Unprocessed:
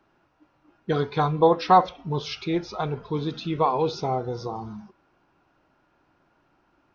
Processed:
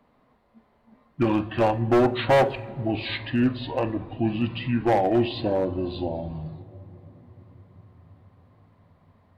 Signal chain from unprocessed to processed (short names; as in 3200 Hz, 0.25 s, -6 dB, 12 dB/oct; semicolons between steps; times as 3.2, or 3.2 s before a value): overloaded stage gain 17.5 dB; on a send at -14 dB: reverb RT60 3.5 s, pre-delay 3 ms; on the sum: speed mistake 45 rpm record played at 33 rpm; gain +2.5 dB